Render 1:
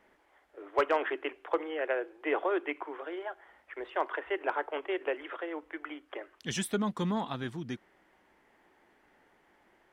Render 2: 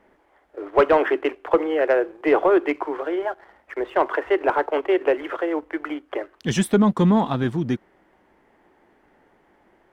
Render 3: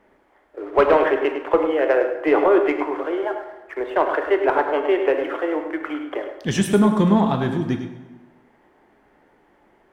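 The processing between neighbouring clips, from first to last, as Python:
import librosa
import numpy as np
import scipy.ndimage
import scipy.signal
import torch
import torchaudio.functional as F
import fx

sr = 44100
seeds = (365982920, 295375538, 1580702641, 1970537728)

y1 = fx.leveller(x, sr, passes=1)
y1 = fx.tilt_shelf(y1, sr, db=5.0, hz=1300.0)
y1 = y1 * 10.0 ** (6.5 / 20.0)
y2 = y1 + 10.0 ** (-9.5 / 20.0) * np.pad(y1, (int(103 * sr / 1000.0), 0))[:len(y1)]
y2 = fx.rev_plate(y2, sr, seeds[0], rt60_s=1.2, hf_ratio=0.75, predelay_ms=0, drr_db=6.0)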